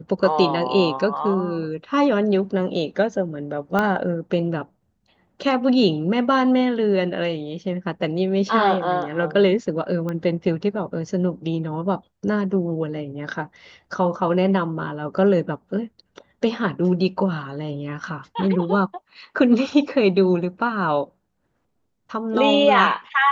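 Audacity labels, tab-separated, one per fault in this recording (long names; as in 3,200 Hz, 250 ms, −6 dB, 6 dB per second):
3.790000	3.790000	click −9 dBFS
10.090000	10.090000	click −17 dBFS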